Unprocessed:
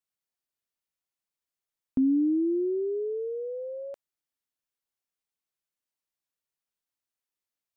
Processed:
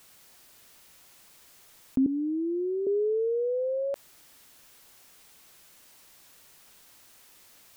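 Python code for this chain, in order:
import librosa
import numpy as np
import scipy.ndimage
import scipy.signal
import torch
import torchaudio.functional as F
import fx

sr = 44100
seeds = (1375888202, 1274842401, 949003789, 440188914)

y = fx.highpass(x, sr, hz=620.0, slope=12, at=(2.06, 2.87))
y = fx.env_flatten(y, sr, amount_pct=50)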